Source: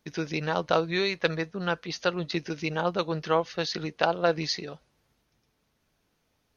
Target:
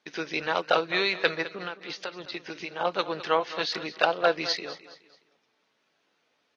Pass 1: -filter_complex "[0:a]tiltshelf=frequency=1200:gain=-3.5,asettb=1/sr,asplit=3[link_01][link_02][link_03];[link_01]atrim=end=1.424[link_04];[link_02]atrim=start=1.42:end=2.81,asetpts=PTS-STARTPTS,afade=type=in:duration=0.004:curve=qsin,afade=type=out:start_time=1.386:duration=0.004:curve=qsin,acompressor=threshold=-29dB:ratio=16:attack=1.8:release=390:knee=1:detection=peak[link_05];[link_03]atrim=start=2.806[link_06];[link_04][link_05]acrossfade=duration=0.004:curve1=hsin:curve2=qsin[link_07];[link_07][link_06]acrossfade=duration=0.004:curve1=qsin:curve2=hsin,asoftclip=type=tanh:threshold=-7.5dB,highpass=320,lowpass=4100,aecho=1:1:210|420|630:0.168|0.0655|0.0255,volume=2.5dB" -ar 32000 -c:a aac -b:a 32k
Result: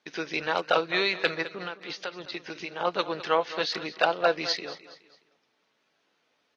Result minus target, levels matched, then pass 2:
soft clipping: distortion +11 dB
-filter_complex "[0:a]tiltshelf=frequency=1200:gain=-3.5,asettb=1/sr,asplit=3[link_01][link_02][link_03];[link_01]atrim=end=1.424[link_04];[link_02]atrim=start=1.42:end=2.81,asetpts=PTS-STARTPTS,afade=type=in:duration=0.004:curve=qsin,afade=type=out:start_time=1.386:duration=0.004:curve=qsin,acompressor=threshold=-29dB:ratio=16:attack=1.8:release=390:knee=1:detection=peak[link_05];[link_03]atrim=start=2.806[link_06];[link_04][link_05]acrossfade=duration=0.004:curve1=hsin:curve2=qsin[link_07];[link_07][link_06]acrossfade=duration=0.004:curve1=qsin:curve2=hsin,asoftclip=type=tanh:threshold=-1dB,highpass=320,lowpass=4100,aecho=1:1:210|420|630:0.168|0.0655|0.0255,volume=2.5dB" -ar 32000 -c:a aac -b:a 32k

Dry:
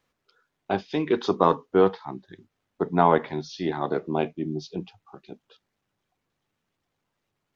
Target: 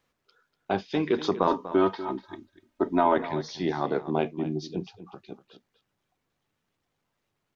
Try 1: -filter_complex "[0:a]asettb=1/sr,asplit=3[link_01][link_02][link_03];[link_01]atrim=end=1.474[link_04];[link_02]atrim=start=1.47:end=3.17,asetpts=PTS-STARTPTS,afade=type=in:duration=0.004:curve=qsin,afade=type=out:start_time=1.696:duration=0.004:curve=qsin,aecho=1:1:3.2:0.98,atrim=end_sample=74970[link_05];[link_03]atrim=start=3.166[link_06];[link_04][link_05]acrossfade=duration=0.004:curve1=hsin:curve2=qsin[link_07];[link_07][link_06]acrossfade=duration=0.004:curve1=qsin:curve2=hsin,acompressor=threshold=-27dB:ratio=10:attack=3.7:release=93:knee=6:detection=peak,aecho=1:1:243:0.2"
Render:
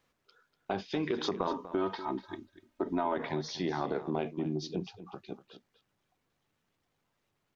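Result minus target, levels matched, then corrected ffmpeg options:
downward compressor: peak gain reduction +10 dB
-filter_complex "[0:a]asettb=1/sr,asplit=3[link_01][link_02][link_03];[link_01]atrim=end=1.474[link_04];[link_02]atrim=start=1.47:end=3.17,asetpts=PTS-STARTPTS,afade=type=in:duration=0.004:curve=qsin,afade=type=out:start_time=1.696:duration=0.004:curve=qsin,aecho=1:1:3.2:0.98,atrim=end_sample=74970[link_05];[link_03]atrim=start=3.166[link_06];[link_04][link_05]acrossfade=duration=0.004:curve1=hsin:curve2=qsin[link_07];[link_07][link_06]acrossfade=duration=0.004:curve1=qsin:curve2=hsin,acompressor=threshold=-16dB:ratio=10:attack=3.7:release=93:knee=6:detection=peak,aecho=1:1:243:0.2"

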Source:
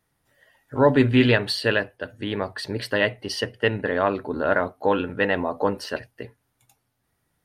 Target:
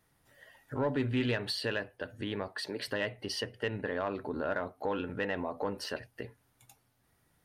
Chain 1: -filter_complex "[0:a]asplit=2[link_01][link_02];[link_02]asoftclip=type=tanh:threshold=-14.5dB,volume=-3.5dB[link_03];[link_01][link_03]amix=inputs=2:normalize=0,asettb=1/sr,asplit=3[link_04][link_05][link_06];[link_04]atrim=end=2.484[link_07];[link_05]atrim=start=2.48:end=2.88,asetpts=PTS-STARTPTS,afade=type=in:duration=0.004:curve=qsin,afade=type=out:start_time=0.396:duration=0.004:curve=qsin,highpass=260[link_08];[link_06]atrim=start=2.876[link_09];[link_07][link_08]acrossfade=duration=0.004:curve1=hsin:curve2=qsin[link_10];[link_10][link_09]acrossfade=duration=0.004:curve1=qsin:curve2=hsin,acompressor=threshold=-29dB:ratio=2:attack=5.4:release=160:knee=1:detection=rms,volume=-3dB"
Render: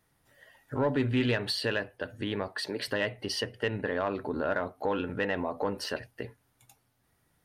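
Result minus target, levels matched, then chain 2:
downward compressor: peak gain reduction −3.5 dB
-filter_complex "[0:a]asplit=2[link_01][link_02];[link_02]asoftclip=type=tanh:threshold=-14.5dB,volume=-3.5dB[link_03];[link_01][link_03]amix=inputs=2:normalize=0,asettb=1/sr,asplit=3[link_04][link_05][link_06];[link_04]atrim=end=2.484[link_07];[link_05]atrim=start=2.48:end=2.88,asetpts=PTS-STARTPTS,afade=type=in:duration=0.004:curve=qsin,afade=type=out:start_time=0.396:duration=0.004:curve=qsin,highpass=260[link_08];[link_06]atrim=start=2.876[link_09];[link_07][link_08]acrossfade=duration=0.004:curve1=hsin:curve2=qsin[link_10];[link_10][link_09]acrossfade=duration=0.004:curve1=qsin:curve2=hsin,acompressor=threshold=-36dB:ratio=2:attack=5.4:release=160:knee=1:detection=rms,volume=-3dB"

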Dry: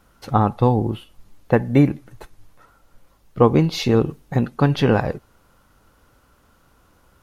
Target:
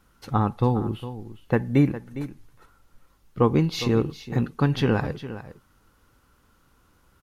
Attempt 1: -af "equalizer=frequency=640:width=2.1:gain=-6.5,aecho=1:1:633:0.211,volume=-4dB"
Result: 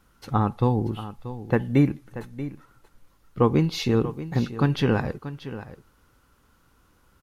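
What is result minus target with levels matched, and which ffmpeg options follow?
echo 225 ms late
-af "equalizer=frequency=640:width=2.1:gain=-6.5,aecho=1:1:408:0.211,volume=-4dB"

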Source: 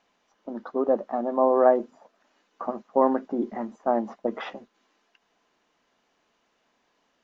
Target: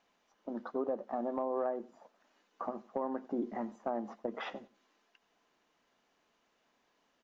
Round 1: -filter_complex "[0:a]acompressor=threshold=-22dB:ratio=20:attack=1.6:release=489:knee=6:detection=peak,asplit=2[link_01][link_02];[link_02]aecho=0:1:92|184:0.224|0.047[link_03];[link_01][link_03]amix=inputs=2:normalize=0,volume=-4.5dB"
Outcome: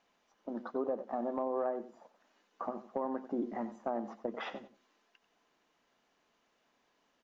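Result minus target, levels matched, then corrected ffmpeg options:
echo-to-direct +7 dB
-filter_complex "[0:a]acompressor=threshold=-22dB:ratio=20:attack=1.6:release=489:knee=6:detection=peak,asplit=2[link_01][link_02];[link_02]aecho=0:1:92|184:0.1|0.021[link_03];[link_01][link_03]amix=inputs=2:normalize=0,volume=-4.5dB"

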